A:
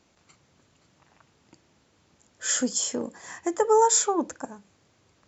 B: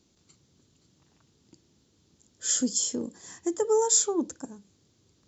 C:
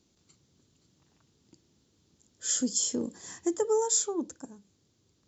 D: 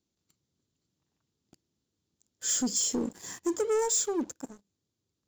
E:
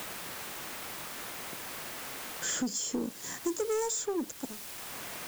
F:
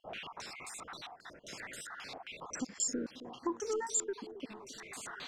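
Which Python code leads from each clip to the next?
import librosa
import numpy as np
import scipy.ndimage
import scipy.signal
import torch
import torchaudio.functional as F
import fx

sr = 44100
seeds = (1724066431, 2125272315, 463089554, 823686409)

y1 = fx.band_shelf(x, sr, hz=1200.0, db=-11.0, octaves=2.6)
y2 = fx.rider(y1, sr, range_db=3, speed_s=0.5)
y2 = F.gain(torch.from_numpy(y2), -1.5).numpy()
y3 = fx.leveller(y2, sr, passes=3)
y3 = F.gain(torch.from_numpy(y3), -8.0).numpy()
y4 = fx.quant_dither(y3, sr, seeds[0], bits=8, dither='triangular')
y4 = fx.band_squash(y4, sr, depth_pct=70)
y4 = F.gain(torch.from_numpy(y4), -1.0).numpy()
y5 = fx.spec_dropout(y4, sr, seeds[1], share_pct=44)
y5 = fx.echo_bbd(y5, sr, ms=269, stages=1024, feedback_pct=67, wet_db=-14.5)
y5 = fx.filter_held_lowpass(y5, sr, hz=7.5, low_hz=710.0, high_hz=8000.0)
y5 = F.gain(torch.from_numpy(y5), -4.5).numpy()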